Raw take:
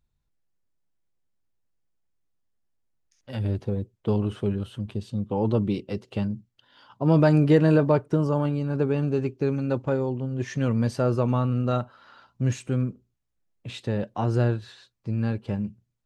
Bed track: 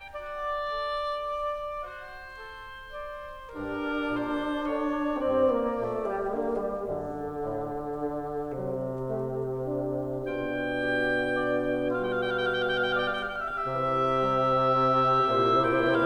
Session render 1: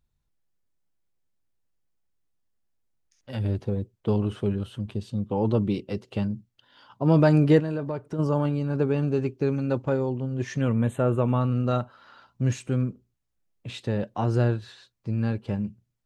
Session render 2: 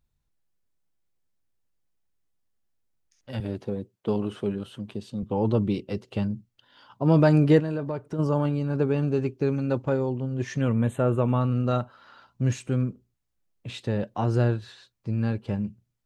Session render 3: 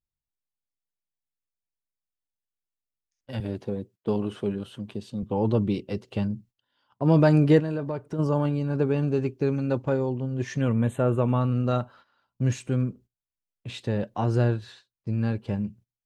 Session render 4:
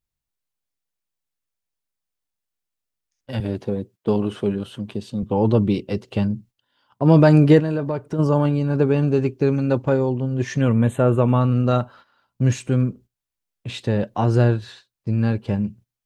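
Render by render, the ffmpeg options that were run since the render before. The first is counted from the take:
ffmpeg -i in.wav -filter_complex "[0:a]asplit=3[link_01][link_02][link_03];[link_01]afade=type=out:start_time=7.59:duration=0.02[link_04];[link_02]acompressor=threshold=-34dB:ratio=2:attack=3.2:release=140:knee=1:detection=peak,afade=type=in:start_time=7.59:duration=0.02,afade=type=out:start_time=8.18:duration=0.02[link_05];[link_03]afade=type=in:start_time=8.18:duration=0.02[link_06];[link_04][link_05][link_06]amix=inputs=3:normalize=0,asettb=1/sr,asplit=3[link_07][link_08][link_09];[link_07]atrim=end=10.614[link_10];[link_08]atrim=start=10.61:end=11.41,asetpts=PTS-STARTPTS,afade=type=in:duration=0.004:curve=qsin,afade=type=out:start_time=0.796:duration=0.004:curve=qsin,asuperstop=centerf=5100:order=8:qfactor=1.6[link_11];[link_09]atrim=start=11.406[link_12];[link_10][link_11]acrossfade=duration=0.004:curve1=hsin:curve2=qsin[link_13];[link_13][link_12]acrossfade=duration=0.004:curve1=qsin:curve2=hsin" out.wav
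ffmpeg -i in.wav -filter_complex "[0:a]asettb=1/sr,asplit=3[link_01][link_02][link_03];[link_01]atrim=end=3.404[link_04];[link_02]atrim=start=3.4:end=5.23,asetpts=PTS-STARTPTS,afade=type=in:duration=0.004:curve=qsin,afade=type=out:start_time=1.826:duration=0.004:curve=qsin,highpass=170[link_05];[link_03]atrim=start=5.226[link_06];[link_04][link_05]acrossfade=duration=0.004:curve1=hsin:curve2=qsin[link_07];[link_07][link_06]acrossfade=duration=0.004:curve1=qsin:curve2=hsin" out.wav
ffmpeg -i in.wav -af "bandreject=frequency=1300:width=23,agate=range=-17dB:threshold=-48dB:ratio=16:detection=peak" out.wav
ffmpeg -i in.wav -af "volume=6dB,alimiter=limit=-3dB:level=0:latency=1" out.wav

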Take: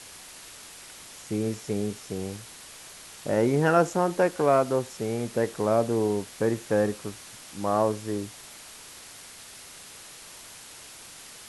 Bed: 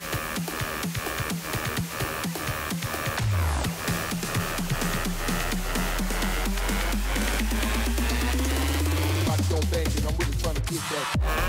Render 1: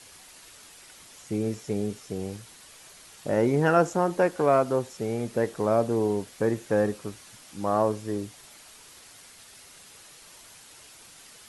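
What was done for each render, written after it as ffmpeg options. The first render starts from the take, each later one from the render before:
ffmpeg -i in.wav -af "afftdn=noise_reduction=6:noise_floor=-46" out.wav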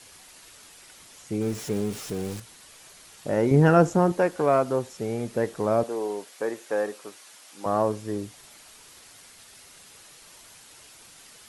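ffmpeg -i in.wav -filter_complex "[0:a]asettb=1/sr,asplit=3[link_01][link_02][link_03];[link_01]atrim=end=1.414[link_04];[link_02]atrim=start=1.41:end=2.4,asetpts=PTS-STARTPTS,afade=type=in:duration=0.004:curve=qsin,afade=type=out:start_time=0.986:duration=0.004:curve=qsin,aeval=exprs='val(0)+0.5*0.0168*sgn(val(0))':channel_layout=same[link_05];[link_03]atrim=start=2.396[link_06];[link_04][link_05]acrossfade=duration=0.004:curve1=hsin:curve2=qsin[link_07];[link_07][link_06]acrossfade=duration=0.004:curve1=qsin:curve2=hsin,asettb=1/sr,asplit=3[link_08][link_09][link_10];[link_08]atrim=end=3.514[link_11];[link_09]atrim=start=3.51:end=4.12,asetpts=PTS-STARTPTS,afade=type=in:duration=0.004:curve=qsin,afade=type=out:start_time=0.606:duration=0.004:curve=qsin,lowshelf=frequency=280:gain=11[link_12];[link_10]atrim=start=4.116[link_13];[link_11][link_12]acrossfade=duration=0.004:curve1=hsin:curve2=qsin[link_14];[link_14][link_13]acrossfade=duration=0.004:curve1=qsin:curve2=hsin,asettb=1/sr,asplit=3[link_15][link_16][link_17];[link_15]atrim=end=5.834[link_18];[link_16]atrim=start=5.83:end=7.66,asetpts=PTS-STARTPTS,afade=type=in:duration=0.004:curve=qsin,afade=type=out:start_time=1.826:duration=0.004:curve=qsin,highpass=440[link_19];[link_17]atrim=start=7.656[link_20];[link_18][link_19]acrossfade=duration=0.004:curve1=hsin:curve2=qsin[link_21];[link_21][link_20]acrossfade=duration=0.004:curve1=qsin:curve2=hsin" out.wav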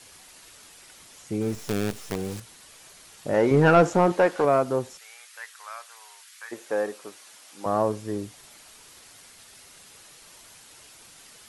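ffmpeg -i in.wav -filter_complex "[0:a]asettb=1/sr,asplit=3[link_01][link_02][link_03];[link_01]atrim=end=1.554[link_04];[link_02]atrim=start=1.55:end=2.16,asetpts=PTS-STARTPTS,afade=type=in:duration=0.004:curve=qsin,afade=type=out:start_time=0.606:duration=0.004:curve=qsin,acrusher=bits=5:dc=4:mix=0:aa=0.000001[link_05];[link_03]atrim=start=2.156[link_06];[link_04][link_05]acrossfade=duration=0.004:curve1=hsin:curve2=qsin[link_07];[link_07][link_06]acrossfade=duration=0.004:curve1=qsin:curve2=hsin,asettb=1/sr,asplit=3[link_08][link_09][link_10];[link_08]atrim=end=3.344[link_11];[link_09]atrim=start=3.34:end=4.45,asetpts=PTS-STARTPTS,afade=type=in:duration=0.004:curve=qsin,afade=type=out:start_time=1.106:duration=0.004:curve=qsin,asplit=2[link_12][link_13];[link_13]highpass=frequency=720:poles=1,volume=13dB,asoftclip=type=tanh:threshold=-7dB[link_14];[link_12][link_14]amix=inputs=2:normalize=0,lowpass=frequency=3100:poles=1,volume=-6dB[link_15];[link_10]atrim=start=4.446[link_16];[link_11][link_15]acrossfade=duration=0.004:curve1=hsin:curve2=qsin[link_17];[link_17][link_16]acrossfade=duration=0.004:curve1=qsin:curve2=hsin,asplit=3[link_18][link_19][link_20];[link_18]afade=type=out:start_time=4.97:duration=0.02[link_21];[link_19]highpass=frequency=1300:width=0.5412,highpass=frequency=1300:width=1.3066,afade=type=in:start_time=4.97:duration=0.02,afade=type=out:start_time=6.51:duration=0.02[link_22];[link_20]afade=type=in:start_time=6.51:duration=0.02[link_23];[link_21][link_22][link_23]amix=inputs=3:normalize=0" out.wav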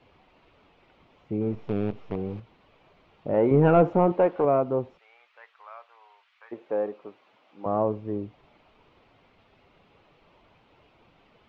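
ffmpeg -i in.wav -af "lowpass=frequency=2400:width=0.5412,lowpass=frequency=2400:width=1.3066,equalizer=frequency=1700:width=1.7:gain=-13" out.wav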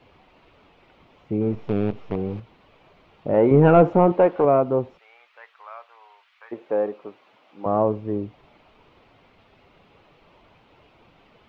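ffmpeg -i in.wav -af "volume=4.5dB" out.wav

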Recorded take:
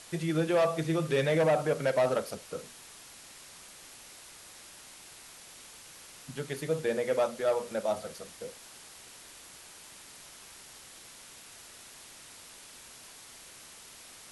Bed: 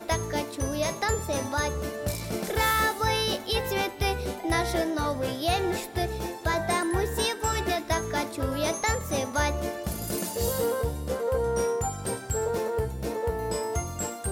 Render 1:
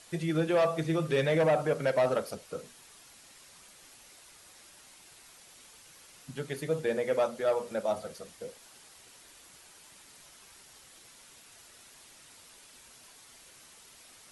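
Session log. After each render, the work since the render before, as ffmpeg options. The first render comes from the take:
ffmpeg -i in.wav -af "afftdn=noise_reduction=6:noise_floor=-51" out.wav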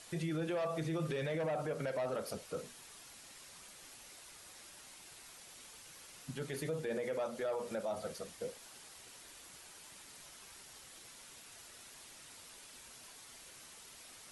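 ffmpeg -i in.wav -af "acompressor=threshold=-30dB:ratio=6,alimiter=level_in=6dB:limit=-24dB:level=0:latency=1:release=12,volume=-6dB" out.wav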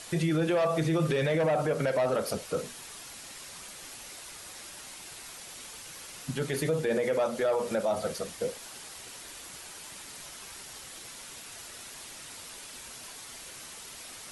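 ffmpeg -i in.wav -af "volume=10dB" out.wav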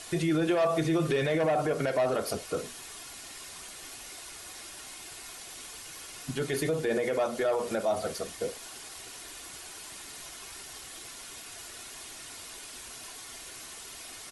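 ffmpeg -i in.wav -af "aecho=1:1:2.8:0.34" out.wav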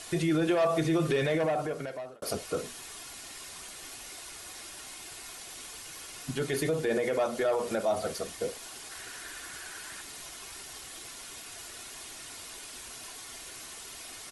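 ffmpeg -i in.wav -filter_complex "[0:a]asettb=1/sr,asplit=3[link_01][link_02][link_03];[link_01]atrim=end=8.914[link_04];[link_02]atrim=start=8.91:end=10.01,asetpts=PTS-STARTPTS,afade=type=in:duration=0.004:curve=qsin,afade=type=out:start_time=1.096:duration=0.004:curve=qsin,equalizer=frequency=1600:width=3:gain=11.5[link_05];[link_03]atrim=start=10.006[link_06];[link_04][link_05]acrossfade=duration=0.004:curve1=hsin:curve2=qsin[link_07];[link_07][link_06]acrossfade=duration=0.004:curve1=qsin:curve2=hsin,asplit=2[link_08][link_09];[link_08]atrim=end=2.22,asetpts=PTS-STARTPTS,afade=type=out:start_time=1.29:duration=0.93[link_10];[link_09]atrim=start=2.22,asetpts=PTS-STARTPTS,afade=type=in:duration=0.004:curve=hsin[link_11];[link_10][link_11]concat=n=2:v=0:a=1" out.wav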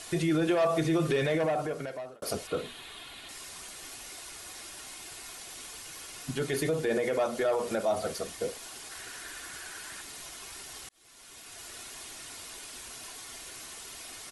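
ffmpeg -i in.wav -filter_complex "[0:a]asettb=1/sr,asplit=3[link_01][link_02][link_03];[link_01]atrim=end=2.474[link_04];[link_02]atrim=start=2.47:end=3.29,asetpts=PTS-STARTPTS,afade=type=in:duration=0.004:curve=qsin,afade=type=out:start_time=0.816:duration=0.004:curve=qsin,highshelf=frequency=4500:width_type=q:width=3:gain=-7[link_05];[link_03]atrim=start=3.286[link_06];[link_04][link_05]acrossfade=duration=0.004:curve1=hsin:curve2=qsin[link_07];[link_07][link_06]acrossfade=duration=0.004:curve1=qsin:curve2=hsin,asplit=2[link_08][link_09];[link_08]atrim=end=10.89,asetpts=PTS-STARTPTS,afade=type=out:start_time=10.886:duration=0.004:curve=hsin[link_10];[link_09]atrim=start=10.89,asetpts=PTS-STARTPTS,afade=type=in:duration=0.84[link_11];[link_10][link_11]concat=n=2:v=0:a=1" out.wav

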